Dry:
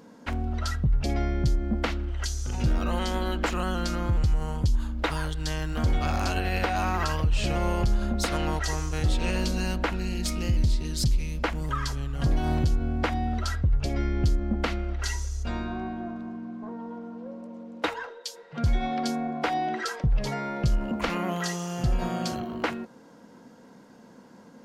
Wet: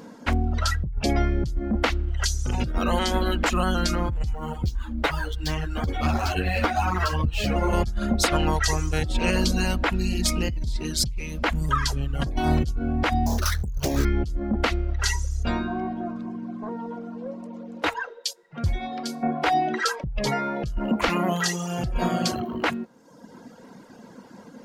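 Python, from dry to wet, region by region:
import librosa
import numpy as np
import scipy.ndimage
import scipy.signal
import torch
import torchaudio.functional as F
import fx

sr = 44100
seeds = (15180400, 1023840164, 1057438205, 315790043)

y = fx.chain(x, sr, fx.median_filter(points=5),
    fx.ensemble(), at=(4.33, 7.73))
y = fx.chain(y, sr, fx.sample_sort(block=8),
    fx.doppler_dist(depth_ms=1.0), at=(13.26, 14.05))
y = fx.chain(y, sr, fx.high_shelf(hz=7900.0, db=4.5),
    fx.comb_fb(f0_hz=89.0, decay_s=0.66, harmonics='all', damping=0.0, mix_pct=70), at=(18.33, 19.23))
y = fx.dereverb_blind(y, sr, rt60_s=0.94)
y = fx.over_compress(y, sr, threshold_db=-26.0, ratio=-0.5)
y = y * 10.0 ** (6.0 / 20.0)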